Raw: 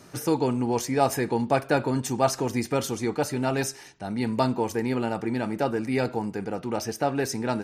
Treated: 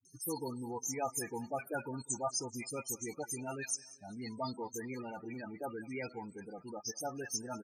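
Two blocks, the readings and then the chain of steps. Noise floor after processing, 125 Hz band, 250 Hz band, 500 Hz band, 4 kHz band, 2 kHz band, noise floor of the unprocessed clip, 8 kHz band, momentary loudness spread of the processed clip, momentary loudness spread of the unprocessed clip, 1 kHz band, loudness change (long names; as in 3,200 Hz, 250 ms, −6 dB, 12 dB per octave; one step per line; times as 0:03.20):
−61 dBFS, −17.5 dB, −16.5 dB, −15.5 dB, −10.5 dB, −12.5 dB, −47 dBFS, −3.0 dB, 8 LU, 6 LU, −14.0 dB, −13.0 dB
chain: first-order pre-emphasis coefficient 0.9
spectral peaks only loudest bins 16
all-pass dispersion highs, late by 53 ms, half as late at 1,400 Hz
on a send: repeating echo 196 ms, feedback 45%, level −22.5 dB
on the sum: level +3.5 dB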